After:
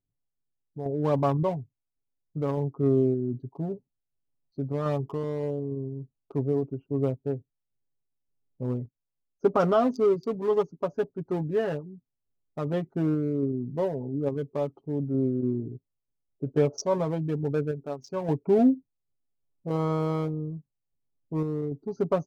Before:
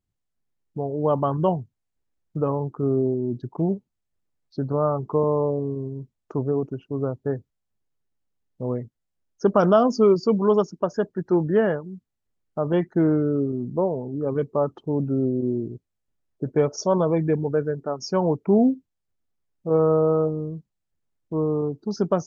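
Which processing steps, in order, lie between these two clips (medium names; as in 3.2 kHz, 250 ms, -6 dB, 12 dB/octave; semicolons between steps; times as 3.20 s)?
local Wiener filter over 25 samples; treble shelf 5.2 kHz +7 dB; comb 7.3 ms, depth 59%; random-step tremolo; trim -3.5 dB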